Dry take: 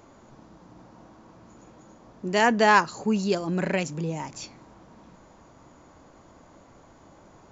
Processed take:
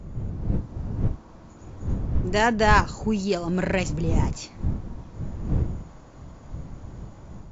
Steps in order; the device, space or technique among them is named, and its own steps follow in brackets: smartphone video outdoors (wind noise 120 Hz -29 dBFS; AGC gain up to 5.5 dB; gain -3.5 dB; AAC 48 kbps 22050 Hz)

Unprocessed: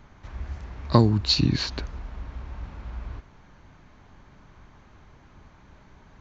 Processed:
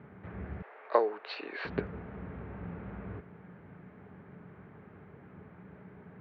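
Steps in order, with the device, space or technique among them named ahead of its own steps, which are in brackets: bass cabinet (speaker cabinet 89–2200 Hz, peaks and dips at 180 Hz +10 dB, 430 Hz +10 dB, 1000 Hz -6 dB); 0.62–1.65 inverse Chebyshev high-pass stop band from 160 Hz, stop band 60 dB

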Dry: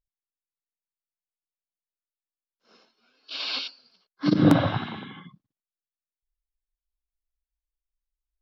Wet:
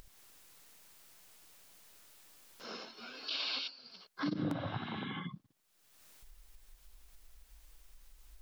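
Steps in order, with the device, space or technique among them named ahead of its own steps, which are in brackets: upward and downward compression (upward compressor, threshold -34 dBFS; compressor 5:1, threshold -36 dBFS, peak gain reduction 21 dB); gain +1 dB

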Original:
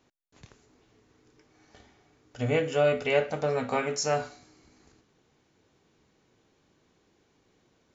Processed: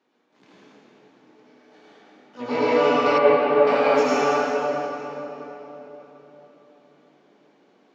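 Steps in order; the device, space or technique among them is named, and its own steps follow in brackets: shimmer-style reverb (harmoniser +12 st -5 dB; reverb RT60 4.0 s, pre-delay 70 ms, DRR -9.5 dB); HPF 210 Hz 24 dB/oct; 3.18–3.67 air absorption 310 m; air absorption 160 m; gain -2 dB

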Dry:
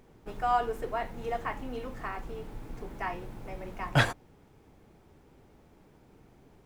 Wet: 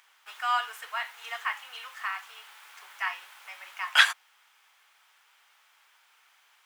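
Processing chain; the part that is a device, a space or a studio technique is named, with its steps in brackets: headphones lying on a table (HPF 1200 Hz 24 dB/oct; bell 3100 Hz +5 dB 0.4 oct); gain +8 dB

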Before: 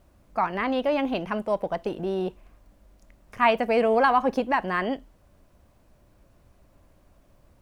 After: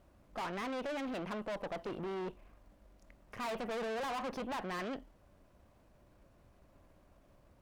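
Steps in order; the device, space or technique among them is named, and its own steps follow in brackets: tube preamp driven hard (tube stage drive 36 dB, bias 0.6; low shelf 170 Hz -4 dB; high shelf 4300 Hz -6.5 dB)

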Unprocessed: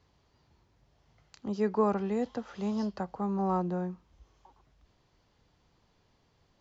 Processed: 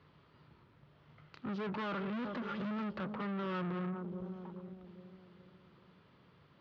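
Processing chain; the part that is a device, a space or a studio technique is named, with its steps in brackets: 1.72–2.71 comb 3.5 ms, depth 74%; analogue delay pedal into a guitar amplifier (analogue delay 0.414 s, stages 2048, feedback 48%, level -16.5 dB; tube stage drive 45 dB, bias 0.55; speaker cabinet 110–3600 Hz, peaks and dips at 150 Hz +6 dB, 760 Hz -7 dB, 1300 Hz +6 dB); gain +8 dB

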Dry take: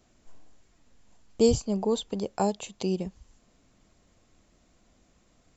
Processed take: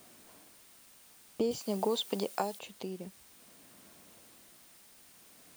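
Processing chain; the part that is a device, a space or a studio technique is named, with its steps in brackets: medium wave at night (BPF 180–3900 Hz; compressor, threshold -30 dBFS, peak gain reduction 13 dB; tremolo 0.51 Hz, depth 76%; whine 9000 Hz -71 dBFS; white noise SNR 22 dB); 1.51–2.59 tilt +2.5 dB/oct; gain +6 dB

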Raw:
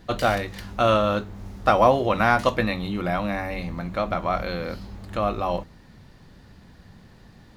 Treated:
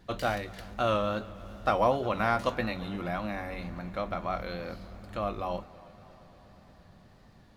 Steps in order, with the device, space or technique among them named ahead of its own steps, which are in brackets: multi-head tape echo (multi-head echo 0.118 s, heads second and third, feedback 72%, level -22.5 dB; wow and flutter); gain -8 dB

